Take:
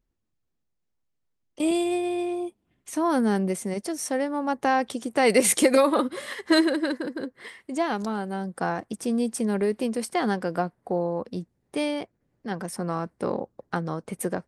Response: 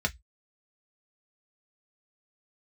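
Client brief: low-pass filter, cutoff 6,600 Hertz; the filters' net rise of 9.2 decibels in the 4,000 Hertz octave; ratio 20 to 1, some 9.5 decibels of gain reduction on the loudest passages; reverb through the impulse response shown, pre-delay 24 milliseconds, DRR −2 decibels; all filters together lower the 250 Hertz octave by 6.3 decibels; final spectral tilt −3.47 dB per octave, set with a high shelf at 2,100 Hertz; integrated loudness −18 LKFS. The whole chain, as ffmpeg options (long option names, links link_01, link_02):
-filter_complex "[0:a]lowpass=6600,equalizer=frequency=250:width_type=o:gain=-9,highshelf=frequency=2100:gain=6,equalizer=frequency=4000:width_type=o:gain=6,acompressor=threshold=-23dB:ratio=20,asplit=2[link_01][link_02];[1:a]atrim=start_sample=2205,adelay=24[link_03];[link_02][link_03]afir=irnorm=-1:irlink=0,volume=-6dB[link_04];[link_01][link_04]amix=inputs=2:normalize=0,volume=8.5dB"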